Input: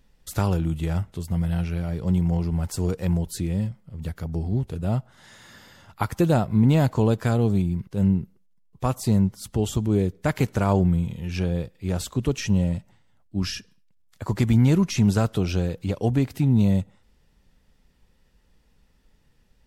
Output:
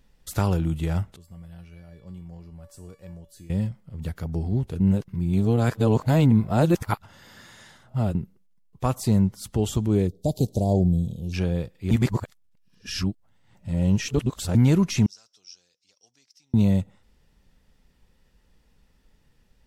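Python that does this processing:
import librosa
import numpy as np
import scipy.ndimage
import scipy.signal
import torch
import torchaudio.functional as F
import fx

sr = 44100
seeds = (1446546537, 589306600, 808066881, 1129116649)

y = fx.comb_fb(x, sr, f0_hz=570.0, decay_s=0.47, harmonics='all', damping=0.0, mix_pct=90, at=(1.16, 3.5))
y = fx.cheby1_bandstop(y, sr, low_hz=690.0, high_hz=3800.0, order=3, at=(10.07, 11.32), fade=0.02)
y = fx.bandpass_q(y, sr, hz=5500.0, q=11.0, at=(15.06, 16.54))
y = fx.edit(y, sr, fx.reverse_span(start_s=4.8, length_s=3.35),
    fx.reverse_span(start_s=11.91, length_s=2.64), tone=tone)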